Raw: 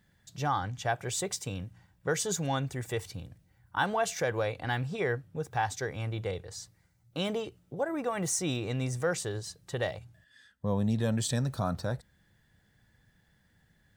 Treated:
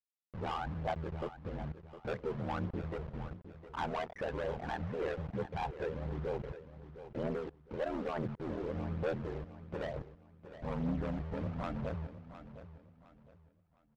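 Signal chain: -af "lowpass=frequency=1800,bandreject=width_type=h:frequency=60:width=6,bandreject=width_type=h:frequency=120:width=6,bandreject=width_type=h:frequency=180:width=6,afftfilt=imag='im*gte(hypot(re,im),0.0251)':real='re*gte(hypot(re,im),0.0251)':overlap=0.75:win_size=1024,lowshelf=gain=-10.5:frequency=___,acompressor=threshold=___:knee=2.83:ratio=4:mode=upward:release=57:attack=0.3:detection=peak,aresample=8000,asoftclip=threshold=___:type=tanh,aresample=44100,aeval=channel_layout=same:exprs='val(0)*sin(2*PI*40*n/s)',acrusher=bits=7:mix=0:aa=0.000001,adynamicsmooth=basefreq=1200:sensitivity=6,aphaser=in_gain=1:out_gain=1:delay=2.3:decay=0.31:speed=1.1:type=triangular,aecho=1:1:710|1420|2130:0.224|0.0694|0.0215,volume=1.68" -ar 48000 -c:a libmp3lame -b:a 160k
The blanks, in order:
140, 0.0178, 0.02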